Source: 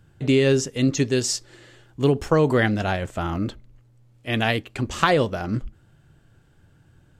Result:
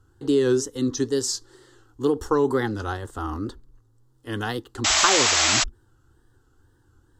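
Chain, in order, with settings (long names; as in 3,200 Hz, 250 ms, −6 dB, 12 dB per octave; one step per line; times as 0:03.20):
tape wow and flutter 130 cents
phaser with its sweep stopped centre 630 Hz, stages 6
sound drawn into the spectrogram noise, 0:04.84–0:05.64, 580–7,900 Hz −20 dBFS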